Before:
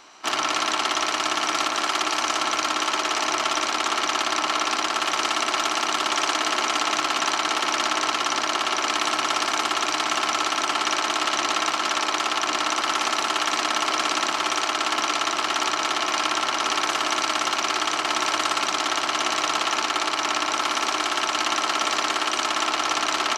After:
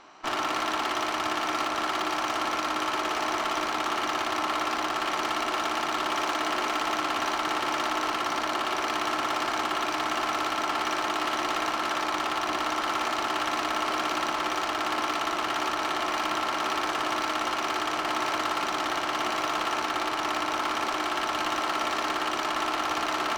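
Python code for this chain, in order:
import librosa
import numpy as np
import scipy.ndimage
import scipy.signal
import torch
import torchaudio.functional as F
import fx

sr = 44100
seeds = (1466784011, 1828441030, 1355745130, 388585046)

y = fx.lowpass(x, sr, hz=1600.0, slope=6)
y = 10.0 ** (-19.5 / 20.0) * np.tanh(y / 10.0 ** (-19.5 / 20.0))
y = fx.cheby_harmonics(y, sr, harmonics=(8,), levels_db=(-23,), full_scale_db=-19.5)
y = fx.doubler(y, sr, ms=39.0, db=-12.0)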